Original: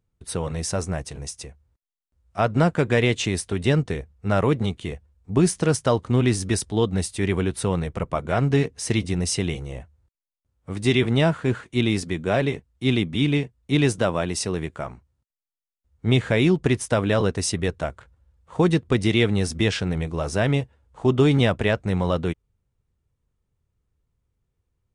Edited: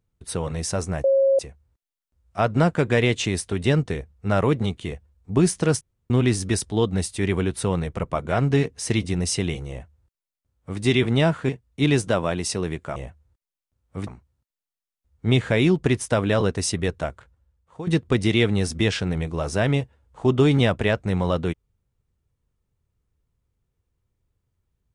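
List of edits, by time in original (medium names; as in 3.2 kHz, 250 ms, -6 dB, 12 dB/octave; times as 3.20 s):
1.04–1.39 s: bleep 543 Hz -14.5 dBFS
5.81–6.10 s: room tone
9.69–10.80 s: copy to 14.87 s
11.49–13.40 s: delete
17.83–18.67 s: fade out, to -17.5 dB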